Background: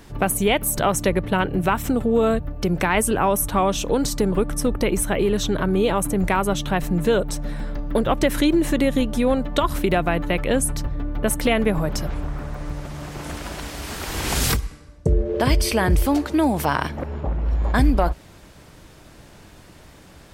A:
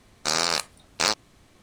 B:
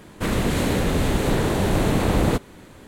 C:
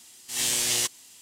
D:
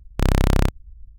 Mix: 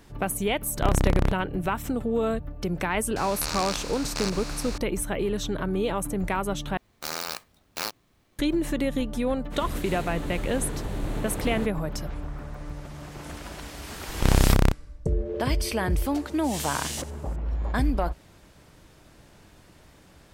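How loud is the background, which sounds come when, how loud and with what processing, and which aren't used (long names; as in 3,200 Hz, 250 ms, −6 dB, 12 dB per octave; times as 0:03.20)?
background −7 dB
0:00.63: mix in D −4.5 dB + high-shelf EQ 3,900 Hz −9 dB
0:03.16: mix in A −12.5 dB + compressor on every frequency bin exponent 0.2
0:06.77: overwrite with A −8.5 dB + converter with an unsteady clock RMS 0.023 ms
0:09.29: mix in B −13.5 dB + multiband upward and downward expander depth 100%
0:14.03: mix in D −1.5 dB
0:16.15: mix in C −9 dB + single-tap delay 87 ms −18 dB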